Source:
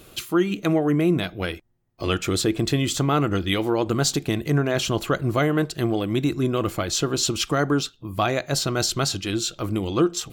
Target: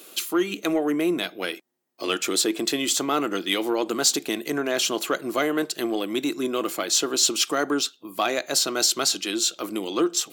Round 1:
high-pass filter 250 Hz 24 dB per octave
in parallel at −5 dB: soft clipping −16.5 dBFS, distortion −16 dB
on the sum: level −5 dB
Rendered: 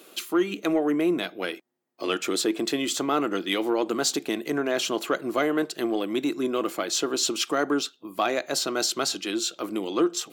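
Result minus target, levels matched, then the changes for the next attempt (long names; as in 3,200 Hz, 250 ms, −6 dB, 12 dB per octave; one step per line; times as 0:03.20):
8,000 Hz band −4.0 dB
add after high-pass filter: high-shelf EQ 3,300 Hz +8.5 dB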